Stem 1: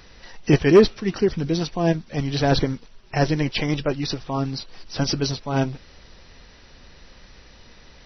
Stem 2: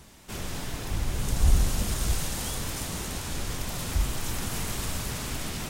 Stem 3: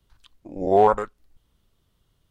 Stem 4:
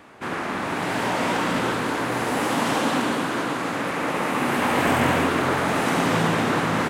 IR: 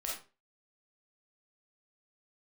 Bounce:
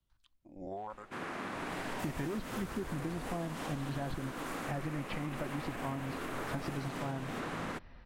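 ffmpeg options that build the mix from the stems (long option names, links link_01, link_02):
-filter_complex "[0:a]lowpass=1800,adelay=1550,volume=-6dB[link_01];[1:a]highshelf=frequency=5100:gain=10,adelay=1700,volume=-11.5dB,afade=type=out:start_time=2.65:duration=0.36:silence=0.237137[link_02];[2:a]acompressor=threshold=-21dB:ratio=10,volume=-15dB[link_03];[3:a]bandreject=frequency=880:width=21,adelay=900,volume=-12dB[link_04];[link_01][link_03]amix=inputs=2:normalize=0,equalizer=frequency=440:width=7.7:gain=-14.5,alimiter=limit=-21dB:level=0:latency=1,volume=0dB[link_05];[link_02][link_04]amix=inputs=2:normalize=0,alimiter=level_in=3.5dB:limit=-24dB:level=0:latency=1:release=191,volume=-3.5dB,volume=0dB[link_06];[link_05][link_06]amix=inputs=2:normalize=0,acompressor=threshold=-34dB:ratio=6"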